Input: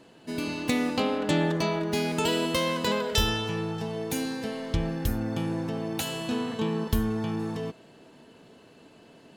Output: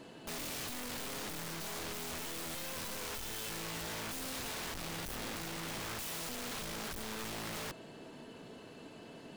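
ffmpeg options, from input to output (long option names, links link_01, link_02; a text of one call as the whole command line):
ffmpeg -i in.wav -af "aeval=exprs='(tanh(56.2*val(0)+0.25)-tanh(0.25))/56.2':channel_layout=same,aeval=exprs='(mod(94.4*val(0)+1,2)-1)/94.4':channel_layout=same,volume=2.5dB" out.wav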